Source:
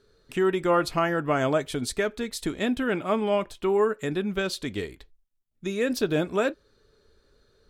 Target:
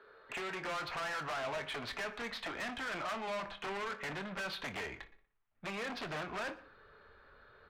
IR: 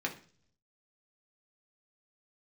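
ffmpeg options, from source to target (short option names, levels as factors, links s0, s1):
-filter_complex "[0:a]adynamicsmooth=sensitivity=3:basefreq=2100,asubboost=boost=6:cutoff=170,acrossover=split=90|200[s0][s1][s2];[s0]acompressor=threshold=0.0178:ratio=4[s3];[s1]acompressor=threshold=0.0178:ratio=4[s4];[s2]acompressor=threshold=0.0316:ratio=4[s5];[s3][s4][s5]amix=inputs=3:normalize=0,aeval=exprs='0.0668*(abs(mod(val(0)/0.0668+3,4)-2)-1)':c=same,asplit=2[s6][s7];[s7]highpass=f=720:p=1,volume=11.2,asoftclip=type=tanh:threshold=0.0668[s8];[s6][s8]amix=inputs=2:normalize=0,lowpass=f=2900:p=1,volume=0.501,acrossover=split=590 4100:gain=0.141 1 0.0708[s9][s10][s11];[s9][s10][s11]amix=inputs=3:normalize=0,asoftclip=type=tanh:threshold=0.0126,asplit=2[s12][s13];[s13]adelay=26,volume=0.251[s14];[s12][s14]amix=inputs=2:normalize=0,asplit=2[s15][s16];[s16]adelay=60,lowpass=f=3800:p=1,volume=0.15,asplit=2[s17][s18];[s18]adelay=60,lowpass=f=3800:p=1,volume=0.55,asplit=2[s19][s20];[s20]adelay=60,lowpass=f=3800:p=1,volume=0.55,asplit=2[s21][s22];[s22]adelay=60,lowpass=f=3800:p=1,volume=0.55,asplit=2[s23][s24];[s24]adelay=60,lowpass=f=3800:p=1,volume=0.55[s25];[s15][s17][s19][s21][s23][s25]amix=inputs=6:normalize=0,asplit=2[s26][s27];[1:a]atrim=start_sample=2205,adelay=116[s28];[s27][s28]afir=irnorm=-1:irlink=0,volume=0.0531[s29];[s26][s29]amix=inputs=2:normalize=0,volume=1.26"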